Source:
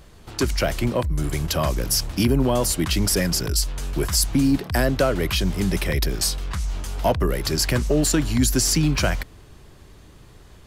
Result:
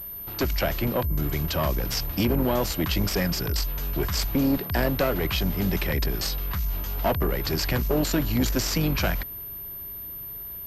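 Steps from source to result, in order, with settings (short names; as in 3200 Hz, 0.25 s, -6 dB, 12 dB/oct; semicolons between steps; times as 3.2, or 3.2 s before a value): one-sided clip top -22 dBFS, bottom -11.5 dBFS; pulse-width modulation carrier 13000 Hz; gain -1.5 dB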